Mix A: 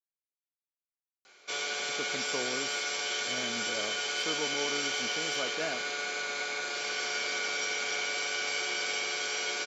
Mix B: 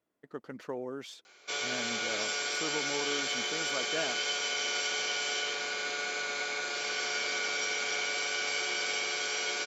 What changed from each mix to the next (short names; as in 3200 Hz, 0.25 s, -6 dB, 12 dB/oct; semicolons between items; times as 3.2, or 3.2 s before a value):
speech: entry -1.65 s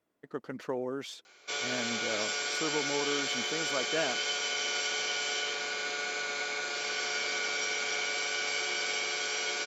speech +3.5 dB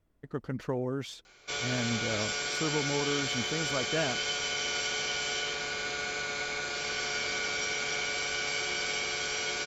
master: remove HPF 290 Hz 12 dB/oct